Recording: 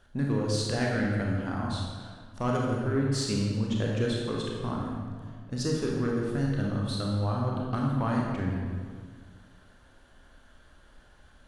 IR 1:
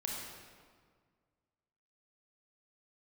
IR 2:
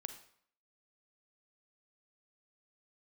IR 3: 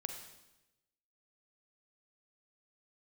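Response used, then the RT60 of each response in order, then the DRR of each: 1; 1.8 s, 0.60 s, 1.0 s; -2.5 dB, 8.0 dB, 5.0 dB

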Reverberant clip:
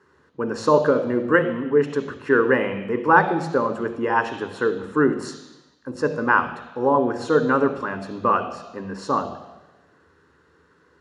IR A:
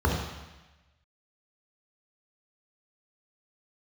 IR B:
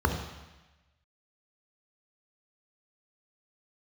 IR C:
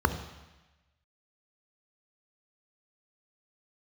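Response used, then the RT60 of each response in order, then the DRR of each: C; 1.1 s, 1.1 s, 1.1 s; -2.0 dB, 4.0 dB, 9.0 dB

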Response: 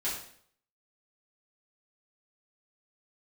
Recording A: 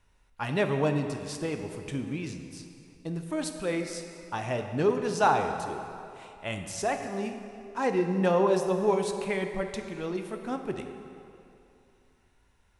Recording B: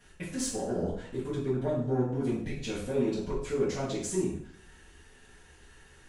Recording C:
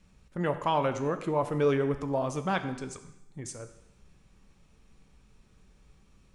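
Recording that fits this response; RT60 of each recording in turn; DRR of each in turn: B; 2.7 s, 0.60 s, 0.85 s; 5.5 dB, -10.0 dB, 7.5 dB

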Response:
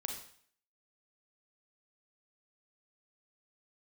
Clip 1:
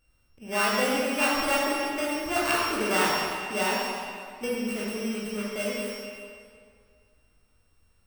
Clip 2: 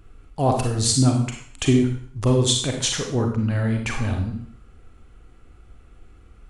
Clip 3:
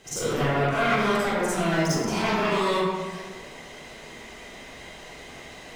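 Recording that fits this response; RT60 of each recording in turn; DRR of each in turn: 2; 2.2 s, 0.55 s, 1.5 s; -6.5 dB, 2.5 dB, -13.0 dB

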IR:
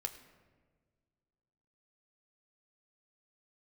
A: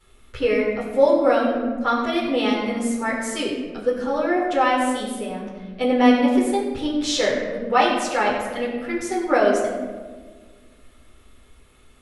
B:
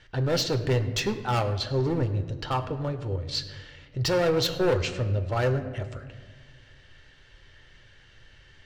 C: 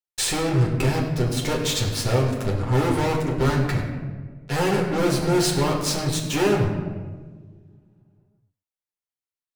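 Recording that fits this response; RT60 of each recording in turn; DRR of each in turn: B; 1.5 s, 1.6 s, 1.5 s; -10.5 dB, 7.0 dB, -2.5 dB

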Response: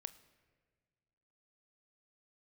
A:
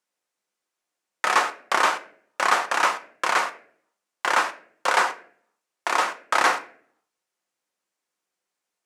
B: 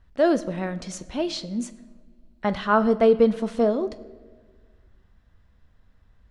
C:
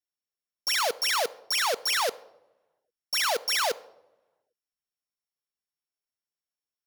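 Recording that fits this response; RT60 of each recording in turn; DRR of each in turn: B; 0.60 s, 1.7 s, no single decay rate; 7.5 dB, 13.0 dB, 14.0 dB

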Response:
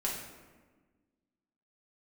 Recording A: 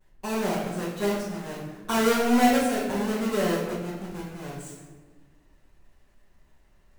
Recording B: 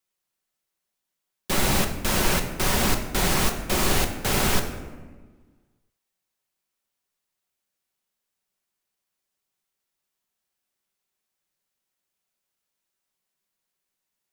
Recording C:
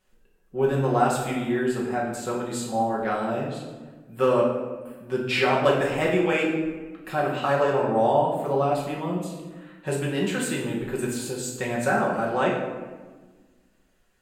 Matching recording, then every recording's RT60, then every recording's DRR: C; 1.4 s, 1.4 s, 1.4 s; -14.0 dB, 4.0 dB, -4.5 dB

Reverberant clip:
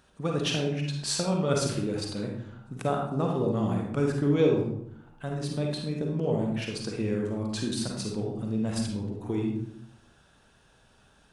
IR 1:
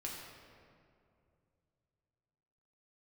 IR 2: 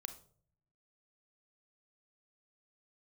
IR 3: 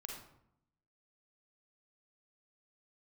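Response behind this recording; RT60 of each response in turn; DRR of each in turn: 3; 2.5 s, 0.50 s, 0.75 s; -3.5 dB, 8.0 dB, 0.0 dB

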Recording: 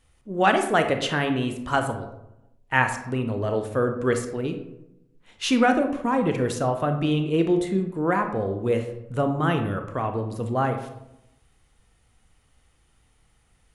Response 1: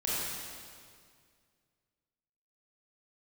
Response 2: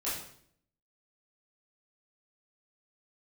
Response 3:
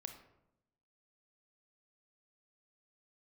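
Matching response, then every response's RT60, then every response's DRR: 3; 2.1 s, 0.65 s, 0.85 s; -8.5 dB, -10.5 dB, 6.0 dB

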